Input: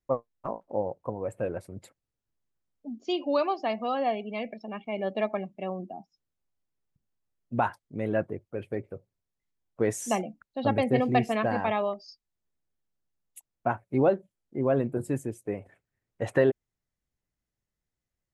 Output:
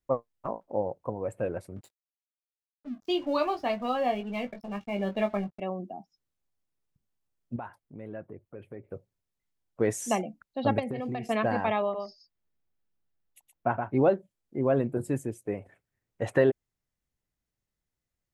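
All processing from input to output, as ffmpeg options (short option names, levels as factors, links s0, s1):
-filter_complex "[0:a]asettb=1/sr,asplit=3[s0][s1][s2];[s0]atrim=end=1.764[s3];[s1]atrim=start=1.76:end=5.6,asetpts=PTS-STARTPTS,afade=t=in:d=0.004:c=qsin,afade=t=out:st=3.836:d=0.004:c=qsin,aeval=exprs='sgn(val(0))*max(abs(val(0))-0.00237,0)':c=same,asubboost=boost=2.5:cutoff=230,asplit=2[s4][s5];[s5]adelay=20,volume=0.501[s6];[s4][s6]amix=inputs=2:normalize=0,atrim=end_sample=169344[s7];[s2]atrim=start=5.596[s8];[s3][s7]acrossfade=d=0.004:c1=hsin:c2=qsin[s9];[s9][s8]acrossfade=d=0.004:c1=qsin:c2=hsin,asettb=1/sr,asplit=3[s10][s11][s12];[s10]atrim=end=7.564[s13];[s11]atrim=start=7.56:end=8.92,asetpts=PTS-STARTPTS,afade=t=in:d=0.004:c=qsin,afade=t=out:st=1.356:d=0.004:c=qsin,acompressor=threshold=0.00501:ratio=2:attack=3.2:release=140:knee=1:detection=peak,equalizer=f=5800:w=0.75:g=-9[s14];[s12]atrim=start=8.916[s15];[s13][s14]acrossfade=d=0.004:c1=hsin:c2=qsin[s16];[s16][s15]acrossfade=d=0.004:c1=qsin:c2=hsin,asettb=1/sr,asplit=3[s17][s18][s19];[s17]atrim=end=10.794[s20];[s18]atrim=start=10.79:end=11.29,asetpts=PTS-STARTPTS,afade=t=in:d=0.004:c=qsin,afade=t=out:st=0.496:d=0.004:c=qsin,agate=range=0.0224:threshold=0.02:ratio=3:release=100:detection=peak,acompressor=threshold=0.0355:ratio=16:attack=3.2:release=140:knee=1:detection=peak[s21];[s19]atrim=start=11.286[s22];[s20][s21]acrossfade=d=0.004:c1=hsin:c2=qsin[s23];[s23][s22]acrossfade=d=0.004:c1=qsin:c2=hsin,asettb=1/sr,asplit=3[s24][s25][s26];[s24]atrim=end=11.824[s27];[s25]atrim=start=11.82:end=13.97,asetpts=PTS-STARTPTS,afade=t=in:d=0.004:c=qsin,afade=t=out:st=2.146:d=0.004:c=qsin,equalizer=f=8700:t=o:w=1.2:g=-12.5,aecho=1:1:121:0.531,atrim=end_sample=94815[s28];[s26]atrim=start=13.966[s29];[s27][s28]acrossfade=d=0.004:c1=hsin:c2=qsin[s30];[s30][s29]acrossfade=d=0.004:c1=qsin:c2=hsin"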